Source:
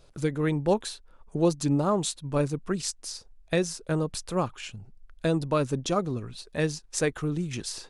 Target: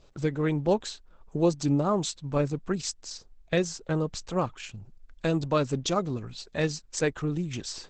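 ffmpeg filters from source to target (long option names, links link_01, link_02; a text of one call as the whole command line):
ffmpeg -i in.wav -filter_complex "[0:a]asplit=3[link_01][link_02][link_03];[link_01]afade=type=out:start_time=4.74:duration=0.02[link_04];[link_02]highshelf=frequency=2500:gain=4,afade=type=in:start_time=4.74:duration=0.02,afade=type=out:start_time=6.75:duration=0.02[link_05];[link_03]afade=type=in:start_time=6.75:duration=0.02[link_06];[link_04][link_05][link_06]amix=inputs=3:normalize=0" -ar 48000 -c:a libopus -b:a 12k out.opus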